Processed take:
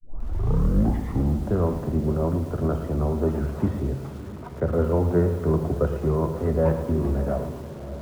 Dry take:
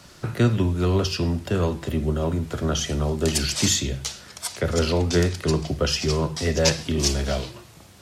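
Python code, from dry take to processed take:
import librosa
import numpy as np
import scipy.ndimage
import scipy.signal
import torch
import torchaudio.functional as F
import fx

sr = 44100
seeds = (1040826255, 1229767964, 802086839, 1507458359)

p1 = fx.tape_start_head(x, sr, length_s=1.5)
p2 = scipy.signal.sosfilt(scipy.signal.butter(4, 1200.0, 'lowpass', fs=sr, output='sos'), p1)
p3 = p2 + fx.echo_diffused(p2, sr, ms=611, feedback_pct=47, wet_db=-12.5, dry=0)
y = fx.echo_crushed(p3, sr, ms=112, feedback_pct=55, bits=7, wet_db=-10.0)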